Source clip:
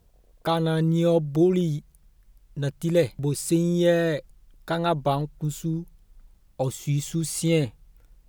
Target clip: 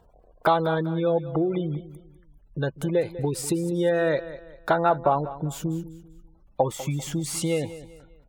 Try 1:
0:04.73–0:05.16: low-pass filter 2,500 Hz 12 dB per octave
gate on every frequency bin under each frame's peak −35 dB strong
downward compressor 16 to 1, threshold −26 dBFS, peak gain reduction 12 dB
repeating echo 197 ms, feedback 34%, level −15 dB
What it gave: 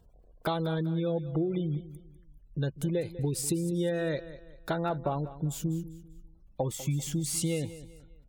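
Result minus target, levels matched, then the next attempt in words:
1,000 Hz band −6.5 dB
0:04.73–0:05.16: low-pass filter 2,500 Hz 12 dB per octave
gate on every frequency bin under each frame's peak −35 dB strong
downward compressor 16 to 1, threshold −26 dBFS, peak gain reduction 12 dB
parametric band 970 Hz +13 dB 2.6 octaves
repeating echo 197 ms, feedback 34%, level −15 dB

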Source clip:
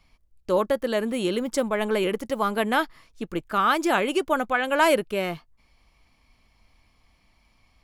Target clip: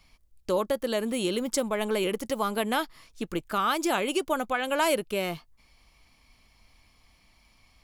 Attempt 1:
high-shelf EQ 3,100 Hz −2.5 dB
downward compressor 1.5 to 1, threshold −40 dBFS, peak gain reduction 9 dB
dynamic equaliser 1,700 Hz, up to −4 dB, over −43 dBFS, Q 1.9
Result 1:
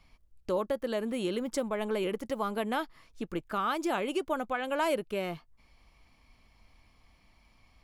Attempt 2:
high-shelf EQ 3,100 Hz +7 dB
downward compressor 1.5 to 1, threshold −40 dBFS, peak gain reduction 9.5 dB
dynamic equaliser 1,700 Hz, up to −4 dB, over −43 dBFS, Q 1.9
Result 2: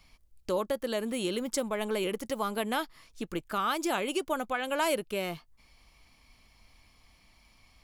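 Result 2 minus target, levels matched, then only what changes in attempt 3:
downward compressor: peak gain reduction +3.5 dB
change: downward compressor 1.5 to 1, threshold −29 dBFS, peak gain reduction 6 dB

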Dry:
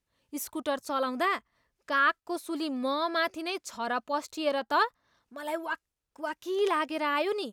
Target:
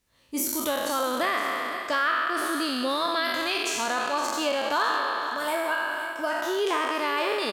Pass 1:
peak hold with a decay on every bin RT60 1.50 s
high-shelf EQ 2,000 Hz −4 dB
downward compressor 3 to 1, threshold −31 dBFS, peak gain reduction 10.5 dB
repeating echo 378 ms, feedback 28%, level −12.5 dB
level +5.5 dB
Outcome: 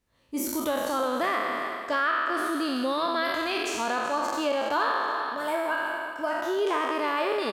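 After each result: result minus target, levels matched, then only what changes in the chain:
echo 136 ms early; 4,000 Hz band −4.0 dB
change: repeating echo 514 ms, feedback 28%, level −12.5 dB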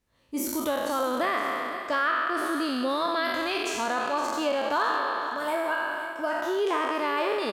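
4,000 Hz band −4.0 dB
change: high-shelf EQ 2,000 Hz +4.5 dB

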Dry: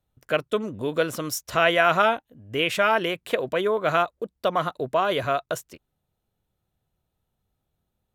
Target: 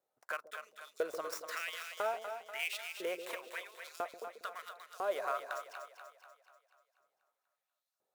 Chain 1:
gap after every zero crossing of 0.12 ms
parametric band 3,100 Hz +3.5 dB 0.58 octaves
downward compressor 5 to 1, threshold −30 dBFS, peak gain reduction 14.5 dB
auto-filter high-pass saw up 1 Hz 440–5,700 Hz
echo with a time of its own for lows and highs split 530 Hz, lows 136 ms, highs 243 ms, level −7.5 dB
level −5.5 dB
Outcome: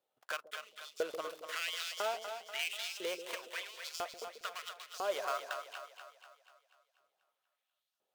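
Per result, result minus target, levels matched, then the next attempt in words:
gap after every zero crossing: distortion +9 dB; 4,000 Hz band +5.5 dB
gap after every zero crossing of 0.05 ms
parametric band 3,100 Hz +3.5 dB 0.58 octaves
downward compressor 5 to 1, threshold −30 dBFS, peak gain reduction 14.5 dB
auto-filter high-pass saw up 1 Hz 440–5,700 Hz
echo with a time of its own for lows and highs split 530 Hz, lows 136 ms, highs 243 ms, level −7.5 dB
level −5.5 dB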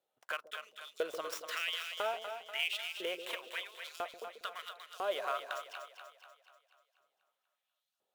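4,000 Hz band +6.0 dB
gap after every zero crossing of 0.05 ms
parametric band 3,100 Hz −8.5 dB 0.58 octaves
downward compressor 5 to 1, threshold −30 dBFS, peak gain reduction 13.5 dB
auto-filter high-pass saw up 1 Hz 440–5,700 Hz
echo with a time of its own for lows and highs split 530 Hz, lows 136 ms, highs 243 ms, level −7.5 dB
level −5.5 dB

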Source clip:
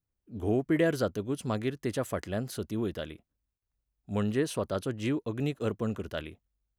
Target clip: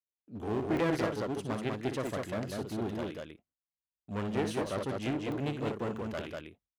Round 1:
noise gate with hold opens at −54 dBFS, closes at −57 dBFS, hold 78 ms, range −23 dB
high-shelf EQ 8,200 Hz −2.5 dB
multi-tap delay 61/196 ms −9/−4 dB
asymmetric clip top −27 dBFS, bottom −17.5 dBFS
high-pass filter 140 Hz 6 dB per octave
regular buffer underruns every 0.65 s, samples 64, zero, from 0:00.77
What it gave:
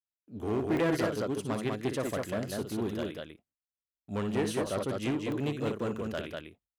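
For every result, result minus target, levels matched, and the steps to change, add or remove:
8,000 Hz band +3.0 dB; asymmetric clip: distortion −4 dB
change: high-shelf EQ 8,200 Hz −12.5 dB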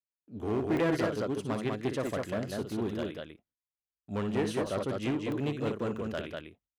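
asymmetric clip: distortion −4 dB
change: asymmetric clip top −35 dBFS, bottom −17.5 dBFS

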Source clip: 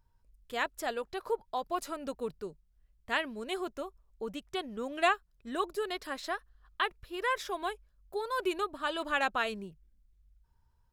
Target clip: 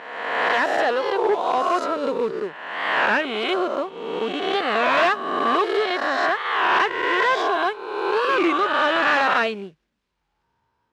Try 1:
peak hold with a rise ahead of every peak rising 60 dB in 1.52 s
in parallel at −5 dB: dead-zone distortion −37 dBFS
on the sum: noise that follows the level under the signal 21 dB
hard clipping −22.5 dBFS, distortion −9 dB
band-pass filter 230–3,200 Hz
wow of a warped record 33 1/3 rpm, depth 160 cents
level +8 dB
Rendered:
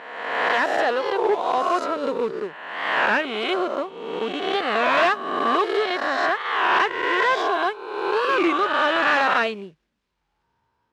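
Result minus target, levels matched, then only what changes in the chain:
dead-zone distortion: distortion +9 dB
change: dead-zone distortion −46 dBFS

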